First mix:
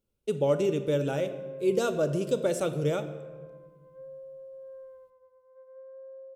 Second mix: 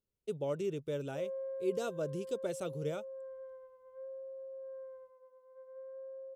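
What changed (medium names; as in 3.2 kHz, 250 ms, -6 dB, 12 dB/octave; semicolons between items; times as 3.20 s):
speech -7.0 dB; reverb: off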